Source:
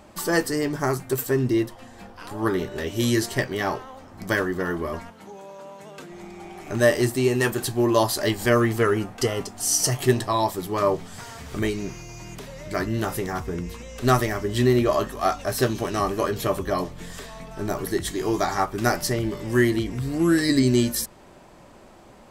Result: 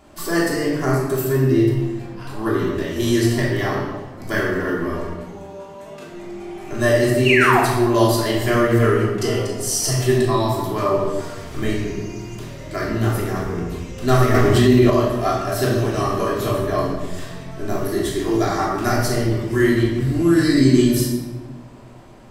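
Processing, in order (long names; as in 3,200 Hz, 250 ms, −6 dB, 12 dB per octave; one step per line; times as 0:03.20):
0:07.25–0:07.60: sound drawn into the spectrogram fall 640–3,000 Hz −18 dBFS
rectangular room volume 860 cubic metres, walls mixed, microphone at 3.1 metres
0:14.34–0:14.90: envelope flattener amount 70%
level −4 dB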